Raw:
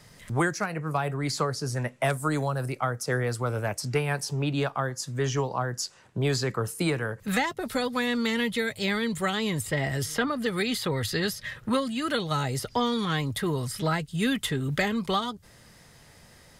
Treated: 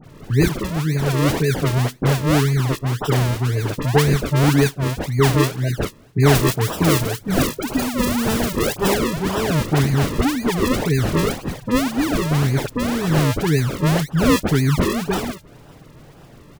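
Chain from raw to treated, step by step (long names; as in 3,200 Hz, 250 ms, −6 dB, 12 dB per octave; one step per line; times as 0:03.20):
linear-phase brick-wall band-stop 460–1,500 Hz
comb filter 7 ms, depth 62%
sample-and-hold swept by an LFO 40×, swing 100% 1.9 Hz
0:06.31–0:08.90: high-shelf EQ 5,800 Hz +7 dB
all-pass dispersion highs, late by 42 ms, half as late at 2,100 Hz
level +8.5 dB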